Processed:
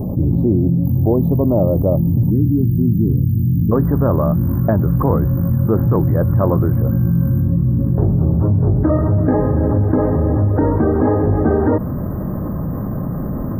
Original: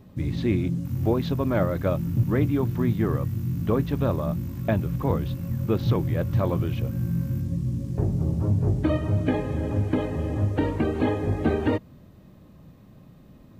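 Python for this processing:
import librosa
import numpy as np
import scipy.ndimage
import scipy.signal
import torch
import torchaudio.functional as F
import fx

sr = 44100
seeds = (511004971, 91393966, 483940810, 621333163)

y = fx.cheby2_bandstop(x, sr, low_hz=fx.steps((0.0, 1500.0), (2.29, 620.0), (3.71, 2500.0)), high_hz=9100.0, order=4, stop_db=40)
y = fx.env_flatten(y, sr, amount_pct=70)
y = y * 10.0 ** (5.0 / 20.0)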